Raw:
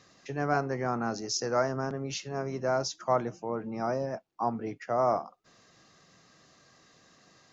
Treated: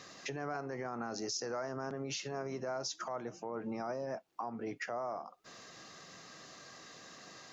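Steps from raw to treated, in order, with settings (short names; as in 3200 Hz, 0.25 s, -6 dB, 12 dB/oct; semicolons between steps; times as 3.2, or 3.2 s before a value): compressor 6:1, threshold -40 dBFS, peak gain reduction 17.5 dB; limiter -36.5 dBFS, peak gain reduction 10 dB; low shelf 160 Hz -10.5 dB; gain +8 dB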